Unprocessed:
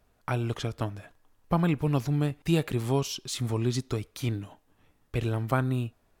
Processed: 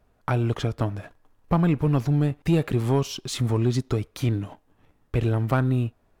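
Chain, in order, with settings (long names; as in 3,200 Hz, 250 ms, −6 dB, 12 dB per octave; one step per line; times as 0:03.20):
high-shelf EQ 2,400 Hz −8.5 dB
in parallel at −1 dB: downward compressor, threshold −34 dBFS, peak gain reduction 14 dB
on the sum: leveller curve on the samples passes 1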